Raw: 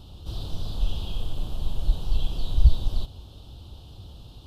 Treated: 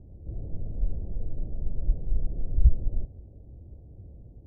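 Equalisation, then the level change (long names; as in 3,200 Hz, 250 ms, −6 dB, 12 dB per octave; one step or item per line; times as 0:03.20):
Butterworth low-pass 610 Hz 36 dB per octave
−2.5 dB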